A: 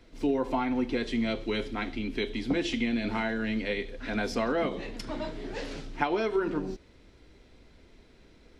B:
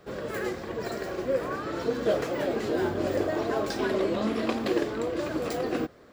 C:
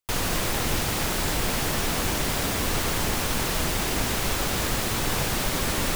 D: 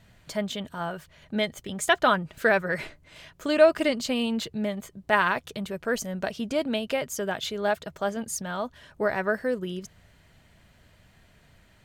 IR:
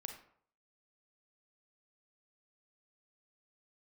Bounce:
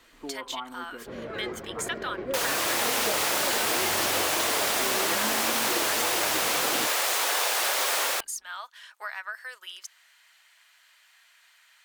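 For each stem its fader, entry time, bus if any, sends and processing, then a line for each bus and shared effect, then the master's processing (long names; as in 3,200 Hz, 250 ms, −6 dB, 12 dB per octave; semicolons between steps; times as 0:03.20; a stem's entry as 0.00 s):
−2.5 dB, 0.00 s, no send, low-pass with resonance 1,200 Hz, resonance Q 4.8; low-shelf EQ 230 Hz −10 dB; automatic ducking −10 dB, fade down 0.40 s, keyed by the fourth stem
−4.0 dB, 1.00 s, no send, low-pass filter 2,800 Hz 12 dB per octave
+1.5 dB, 2.25 s, no send, high-pass filter 520 Hz 24 dB per octave; automatic gain control gain up to 4 dB; tape wow and flutter 33 cents
+2.5 dB, 0.00 s, no send, high-pass filter 990 Hz 24 dB per octave; tilt shelving filter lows −3.5 dB, about 1,300 Hz; downward compressor 3 to 1, threshold −37 dBFS, peak gain reduction 15 dB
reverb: not used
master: downward compressor, threshold −22 dBFS, peak gain reduction 4.5 dB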